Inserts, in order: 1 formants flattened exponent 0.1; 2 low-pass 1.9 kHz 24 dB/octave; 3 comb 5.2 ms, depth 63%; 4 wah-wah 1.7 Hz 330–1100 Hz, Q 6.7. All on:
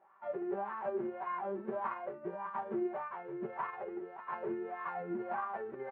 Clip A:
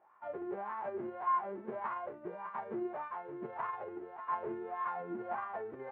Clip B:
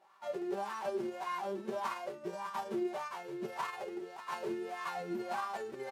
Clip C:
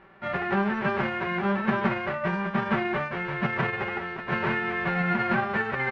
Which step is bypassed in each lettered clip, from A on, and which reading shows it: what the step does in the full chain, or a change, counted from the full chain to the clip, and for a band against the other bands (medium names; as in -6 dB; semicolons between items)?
3, crest factor change +2.0 dB; 2, 2 kHz band +2.5 dB; 4, 125 Hz band +13.0 dB